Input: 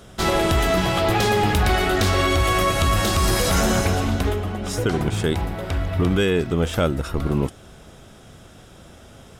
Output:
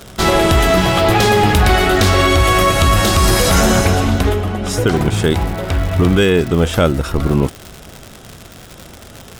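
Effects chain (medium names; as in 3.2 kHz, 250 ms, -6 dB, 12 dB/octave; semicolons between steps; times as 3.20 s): crackle 150 per s -28 dBFS, from 3.39 s 20 per s, from 4.87 s 160 per s; trim +7 dB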